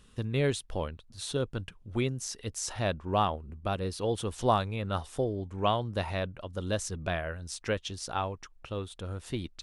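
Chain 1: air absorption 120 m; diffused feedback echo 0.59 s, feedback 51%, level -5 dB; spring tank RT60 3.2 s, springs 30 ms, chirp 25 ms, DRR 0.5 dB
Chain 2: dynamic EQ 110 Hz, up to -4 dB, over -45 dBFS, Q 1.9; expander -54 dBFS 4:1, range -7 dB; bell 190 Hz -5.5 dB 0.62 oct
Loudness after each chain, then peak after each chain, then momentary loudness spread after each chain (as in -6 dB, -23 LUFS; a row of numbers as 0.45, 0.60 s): -28.5, -34.0 LUFS; -12.0, -12.0 dBFS; 7, 10 LU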